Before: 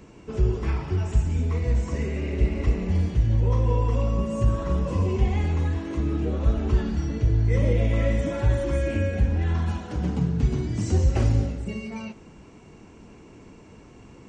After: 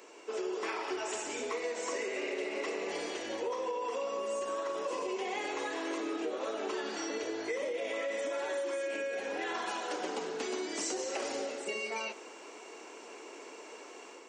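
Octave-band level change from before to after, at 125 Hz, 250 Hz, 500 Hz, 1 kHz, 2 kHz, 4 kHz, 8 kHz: under -40 dB, -13.0 dB, -3.0 dB, -0.5 dB, +0.5 dB, +3.0 dB, n/a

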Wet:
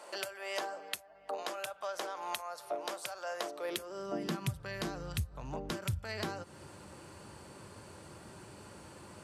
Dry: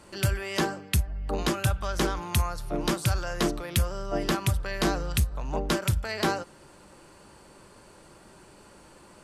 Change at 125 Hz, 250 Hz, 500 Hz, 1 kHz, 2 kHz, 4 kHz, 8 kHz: -13.5, -12.5, -8.0, -8.0, -9.5, -9.0, -11.0 dB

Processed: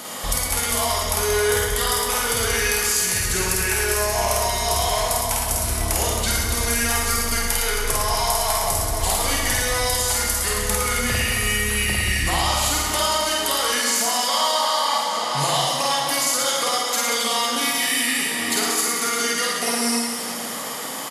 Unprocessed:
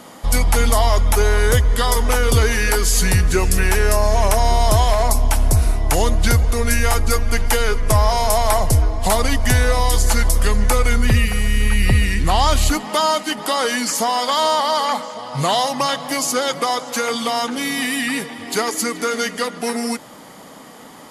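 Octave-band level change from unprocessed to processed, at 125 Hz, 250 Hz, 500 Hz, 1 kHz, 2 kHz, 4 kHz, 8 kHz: -10.5, -6.0, -4.5, -3.0, -0.5, +2.0, +3.0 dB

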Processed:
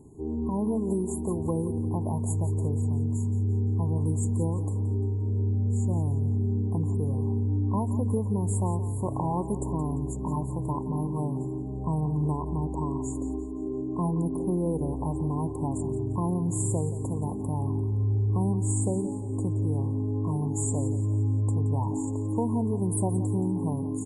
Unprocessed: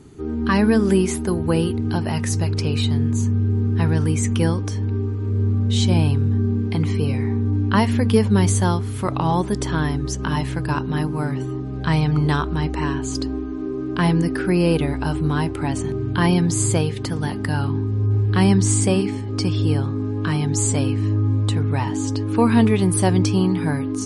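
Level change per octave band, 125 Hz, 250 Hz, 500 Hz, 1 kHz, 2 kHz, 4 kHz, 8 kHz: -6.5 dB, -8.5 dB, -9.0 dB, -9.5 dB, under -40 dB, under -40 dB, -10.0 dB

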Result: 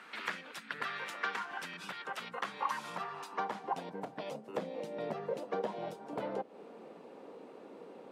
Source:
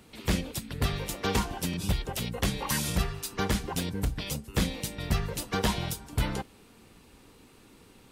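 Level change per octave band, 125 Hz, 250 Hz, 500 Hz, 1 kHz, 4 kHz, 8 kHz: -23.5, -14.0, -3.0, -1.5, -13.0, -20.5 dB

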